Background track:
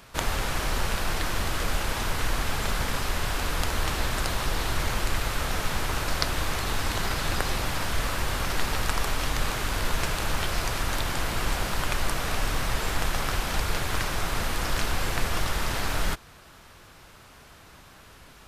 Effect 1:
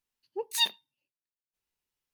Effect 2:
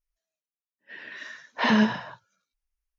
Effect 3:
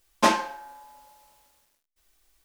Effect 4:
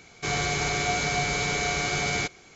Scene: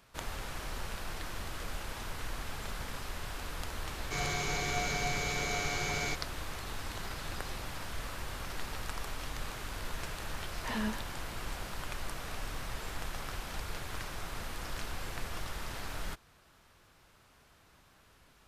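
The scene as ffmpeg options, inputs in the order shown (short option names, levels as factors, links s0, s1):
-filter_complex "[0:a]volume=0.237[s0];[4:a]atrim=end=2.55,asetpts=PTS-STARTPTS,volume=0.398,afade=t=in:d=0.004:c=hsin,afade=t=out:st=2.546:d=0.004:c=hsin,adelay=3880[s1];[2:a]atrim=end=2.98,asetpts=PTS-STARTPTS,volume=0.178,afade=t=in:d=0.004:c=hsin,afade=t=out:st=2.976:d=0.004:c=hsin,adelay=9050[s2];[s0][s1][s2]amix=inputs=3:normalize=0"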